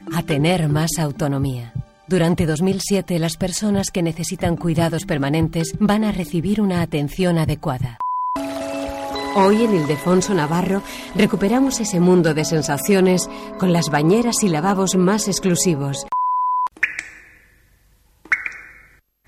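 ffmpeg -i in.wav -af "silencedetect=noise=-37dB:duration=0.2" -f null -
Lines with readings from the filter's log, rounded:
silence_start: 1.84
silence_end: 2.09 | silence_duration: 0.25
silence_start: 17.27
silence_end: 18.25 | silence_duration: 0.98
silence_start: 18.83
silence_end: 19.27 | silence_duration: 0.44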